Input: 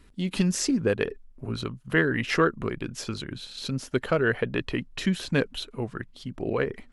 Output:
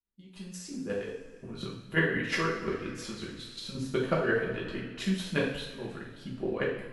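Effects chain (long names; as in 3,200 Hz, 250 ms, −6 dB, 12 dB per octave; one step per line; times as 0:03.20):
fade in at the beginning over 1.90 s
square-wave tremolo 5.6 Hz, depth 60%, duty 15%
coupled-rooms reverb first 0.61 s, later 2.7 s, from −16 dB, DRR −5 dB
level −5.5 dB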